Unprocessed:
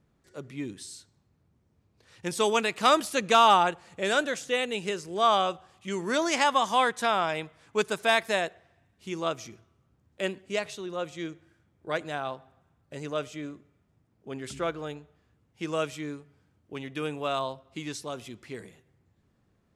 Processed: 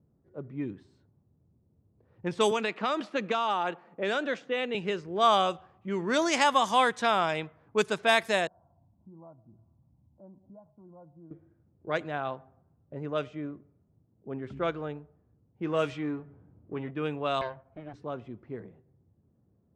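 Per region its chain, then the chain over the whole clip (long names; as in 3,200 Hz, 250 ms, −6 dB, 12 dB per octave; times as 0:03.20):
0:02.51–0:04.75: high-pass filter 190 Hz 24 dB per octave + high-shelf EQ 6,500 Hz −9 dB + downward compressor 12 to 1, threshold −23 dBFS
0:08.47–0:11.31: comb filter 1.2 ms, depth 91% + downward compressor 2 to 1, threshold −58 dBFS + Chebyshev low-pass with heavy ripple 1,400 Hz, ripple 3 dB
0:15.65–0:16.91: mu-law and A-law mismatch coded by mu + high-shelf EQ 4,900 Hz −8.5 dB + double-tracking delay 17 ms −11.5 dB
0:17.41–0:17.94: lower of the sound and its delayed copy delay 1.3 ms + low-pass filter 3,200 Hz
whole clip: high-pass filter 74 Hz; low-pass that shuts in the quiet parts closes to 600 Hz, open at −21.5 dBFS; low-shelf EQ 160 Hz +4.5 dB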